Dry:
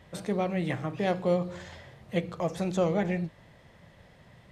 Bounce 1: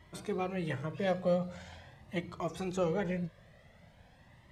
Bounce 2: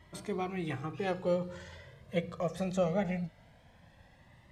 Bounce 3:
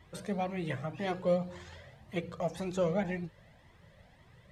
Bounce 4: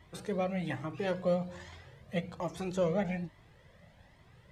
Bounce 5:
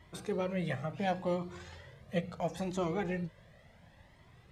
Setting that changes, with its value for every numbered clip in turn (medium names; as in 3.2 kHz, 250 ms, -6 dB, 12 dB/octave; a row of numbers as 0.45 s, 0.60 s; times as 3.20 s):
Shepard-style flanger, rate: 0.44 Hz, 0.21 Hz, 1.9 Hz, 1.2 Hz, 0.72 Hz